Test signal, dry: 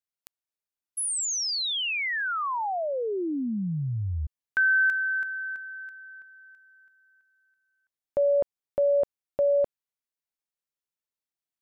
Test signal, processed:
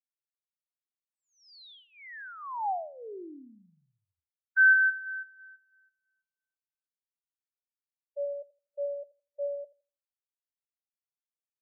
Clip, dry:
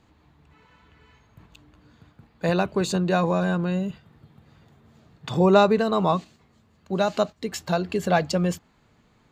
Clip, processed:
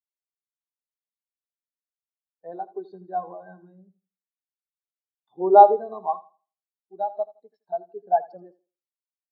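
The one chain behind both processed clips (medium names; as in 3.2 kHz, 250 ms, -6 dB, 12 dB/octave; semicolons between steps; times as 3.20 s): cabinet simulation 360–5100 Hz, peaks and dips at 550 Hz -6 dB, 790 Hz +4 dB, 1.3 kHz -3 dB, 2.7 kHz -10 dB; on a send: feedback delay 82 ms, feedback 55%, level -8 dB; on the sum: spectral contrast expander 2.5:1; trim +4 dB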